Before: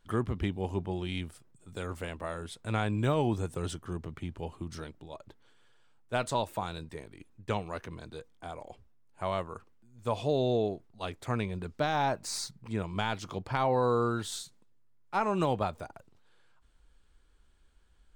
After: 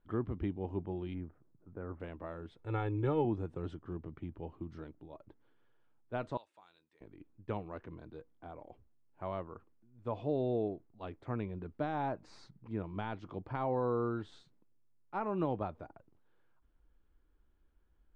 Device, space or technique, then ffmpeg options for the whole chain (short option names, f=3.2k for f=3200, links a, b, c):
phone in a pocket: -filter_complex "[0:a]asettb=1/sr,asplit=3[a][b][c];[a]atrim=end=1.144[d];[b]atrim=start=1.14:end=2,asetpts=PTS-STARTPTS,afade=t=in:d=0.004:c=qsin,afade=t=out:st=0.856:d=0.004:c=qsin,lowpass=f=1.7k:w=0.5412,lowpass=f=1.7k:w=1.3066[e];[c]atrim=start=1.996[f];[d][e]acrossfade=d=0.004:c1=hsin:c2=qsin[g];[g][f]acrossfade=d=0.004:c1=qsin:c2=hsin,asettb=1/sr,asplit=3[h][i][j];[h]atrim=end=2.594[k];[i]atrim=start=2.59:end=3.25,asetpts=PTS-STARTPTS,afade=t=in:d=0.004:c=qsin,afade=t=out:st=0.656:d=0.004:c=qsin,aecho=1:1:2.3:0.82,atrim=end_sample=29106[l];[j]atrim=start=3.246[m];[k][l]acrossfade=d=0.004:c1=hsin:c2=qsin[n];[n][m]acrossfade=d=0.004:c1=qsin:c2=hsin,asettb=1/sr,asplit=3[o][p][q];[o]atrim=end=6.374[r];[p]atrim=start=6.37:end=7.01,asetpts=PTS-STARTPTS,afade=t=in:d=0.004:c=qsin,afade=t=out:st=0.636:d=0.004:c=qsin,aderivative[s];[q]atrim=start=7.006[t];[r][s]acrossfade=d=0.004:c1=hsin:c2=qsin[u];[u][t]acrossfade=d=0.004:c1=qsin:c2=hsin,lowpass=3.4k,equalizer=f=310:t=o:w=0.45:g=6,highshelf=f=2.1k:g=-12,volume=-6dB"